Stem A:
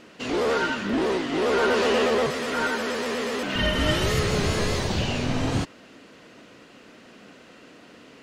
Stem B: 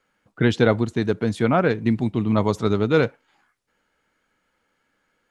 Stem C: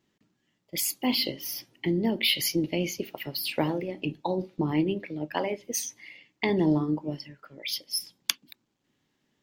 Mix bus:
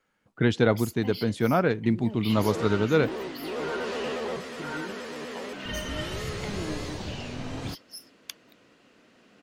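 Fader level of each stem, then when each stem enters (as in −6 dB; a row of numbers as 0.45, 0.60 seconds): −10.0, −4.0, −13.0 decibels; 2.10, 0.00, 0.00 seconds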